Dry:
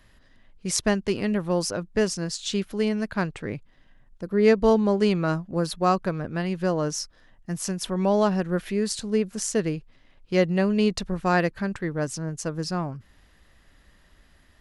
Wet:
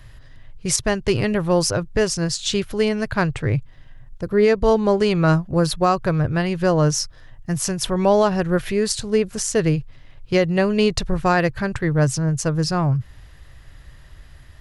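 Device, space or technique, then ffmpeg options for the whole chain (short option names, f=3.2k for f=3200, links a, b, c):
car stereo with a boomy subwoofer: -af "lowshelf=f=160:t=q:w=3:g=6.5,alimiter=limit=-14.5dB:level=0:latency=1:release=216,volume=7.5dB"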